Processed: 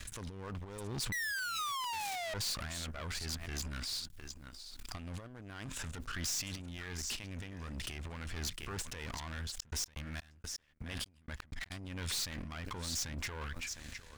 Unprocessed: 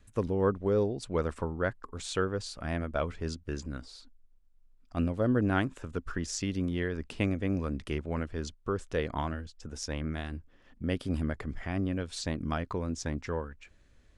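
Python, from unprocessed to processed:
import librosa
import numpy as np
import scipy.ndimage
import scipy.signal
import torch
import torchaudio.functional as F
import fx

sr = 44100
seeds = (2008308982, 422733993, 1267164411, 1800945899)

y = fx.over_compress(x, sr, threshold_db=-39.0, ratio=-1.0)
y = fx.low_shelf(y, sr, hz=490.0, db=-4.0)
y = y + 10.0 ** (-15.0 / 20.0) * np.pad(y, (int(708 * sr / 1000.0), 0))[:len(y)]
y = fx.spec_paint(y, sr, seeds[0], shape='fall', start_s=1.12, length_s=1.22, low_hz=620.0, high_hz=2000.0, level_db=-23.0)
y = fx.tube_stage(y, sr, drive_db=39.0, bias=0.75)
y = fx.tone_stack(y, sr, knobs='5-5-5')
y = fx.notch(y, sr, hz=1300.0, q=30.0)
y = fx.leveller(y, sr, passes=3)
y = fx.step_gate(y, sr, bpm=125, pattern='xx..x.x.xx..x..', floor_db=-60.0, edge_ms=4.5, at=(9.55, 11.7), fade=0.02)
y = fx.pre_swell(y, sr, db_per_s=32.0)
y = y * 10.0 ** (8.0 / 20.0)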